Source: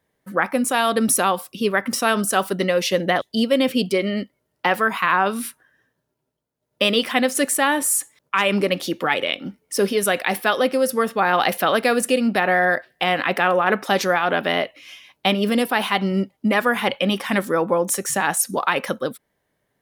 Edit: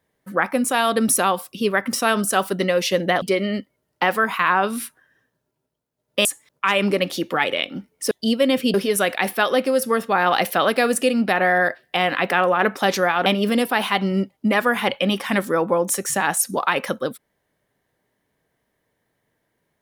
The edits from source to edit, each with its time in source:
0:03.22–0:03.85: move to 0:09.81
0:06.88–0:07.95: remove
0:14.33–0:15.26: remove

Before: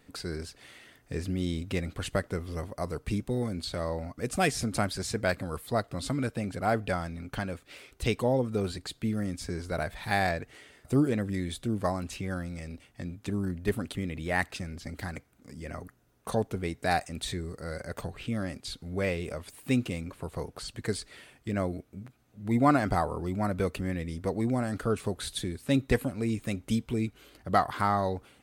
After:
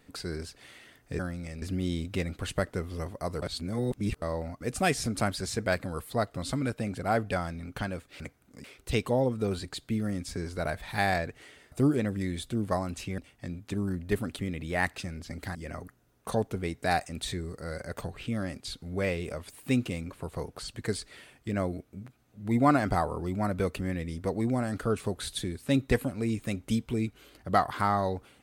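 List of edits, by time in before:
0:02.99–0:03.79: reverse
0:12.31–0:12.74: move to 0:01.19
0:15.11–0:15.55: move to 0:07.77

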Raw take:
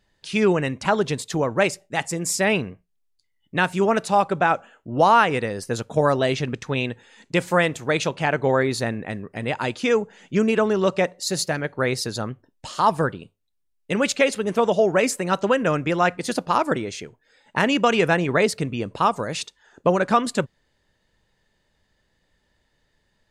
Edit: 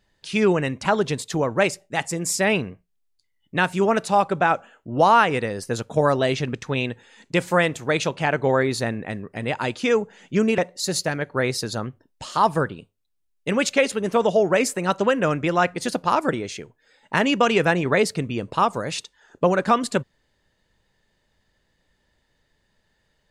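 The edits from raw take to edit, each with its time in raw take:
0:10.58–0:11.01: remove

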